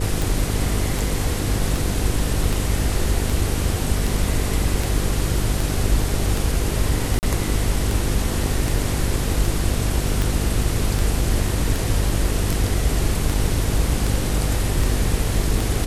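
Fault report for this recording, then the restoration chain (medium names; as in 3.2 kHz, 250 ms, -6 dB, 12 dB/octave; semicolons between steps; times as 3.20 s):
buzz 50 Hz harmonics 10 -24 dBFS
tick 78 rpm
7.19–7.23 s: dropout 39 ms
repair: de-click; de-hum 50 Hz, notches 10; interpolate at 7.19 s, 39 ms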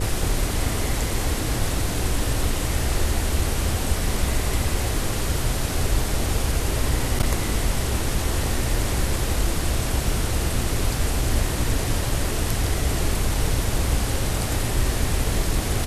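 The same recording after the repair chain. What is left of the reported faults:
nothing left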